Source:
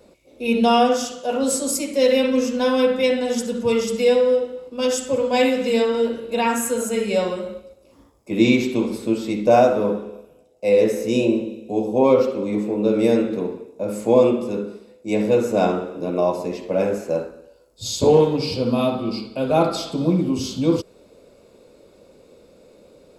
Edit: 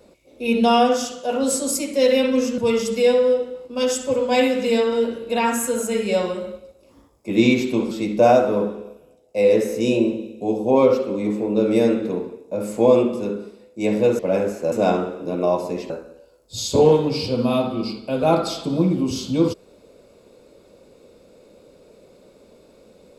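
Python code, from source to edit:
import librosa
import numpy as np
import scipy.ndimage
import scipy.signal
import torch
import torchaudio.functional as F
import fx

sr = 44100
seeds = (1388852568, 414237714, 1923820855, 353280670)

y = fx.edit(x, sr, fx.cut(start_s=2.58, length_s=1.02),
    fx.cut(start_s=8.93, length_s=0.26),
    fx.move(start_s=16.65, length_s=0.53, to_s=15.47), tone=tone)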